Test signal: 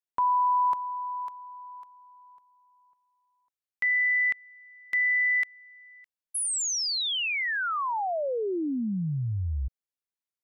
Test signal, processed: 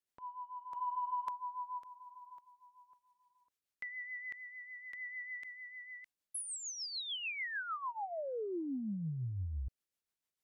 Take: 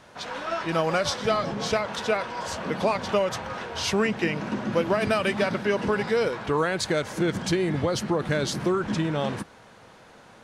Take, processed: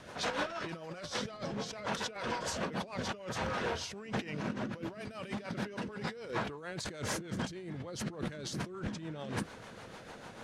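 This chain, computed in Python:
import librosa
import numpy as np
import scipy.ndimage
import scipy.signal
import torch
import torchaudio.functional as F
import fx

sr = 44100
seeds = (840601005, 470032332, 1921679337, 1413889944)

y = fx.dynamic_eq(x, sr, hz=6700.0, q=0.86, threshold_db=-42.0, ratio=4.0, max_db=4)
y = fx.over_compress(y, sr, threshold_db=-35.0, ratio=-1.0)
y = fx.rotary(y, sr, hz=6.7)
y = y * librosa.db_to_amplitude(-3.0)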